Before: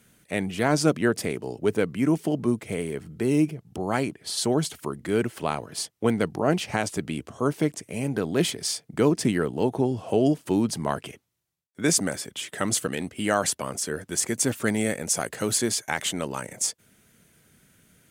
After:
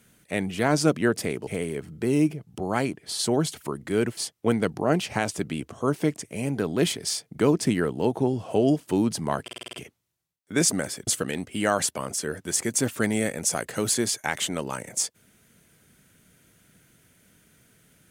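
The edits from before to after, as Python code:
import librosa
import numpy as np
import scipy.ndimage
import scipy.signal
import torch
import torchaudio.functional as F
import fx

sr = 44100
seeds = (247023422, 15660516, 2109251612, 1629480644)

y = fx.edit(x, sr, fx.cut(start_s=1.47, length_s=1.18),
    fx.cut(start_s=5.35, length_s=0.4),
    fx.stutter(start_s=11.01, slice_s=0.05, count=7),
    fx.cut(start_s=12.35, length_s=0.36), tone=tone)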